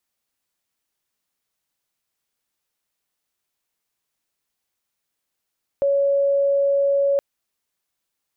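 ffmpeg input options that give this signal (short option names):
-f lavfi -i "sine=f=559:d=1.37:r=44100,volume=2.56dB"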